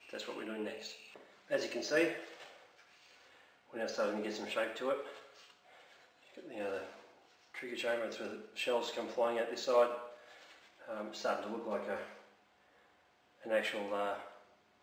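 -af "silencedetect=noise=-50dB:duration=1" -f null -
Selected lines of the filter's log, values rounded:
silence_start: 12.21
silence_end: 13.43 | silence_duration: 1.22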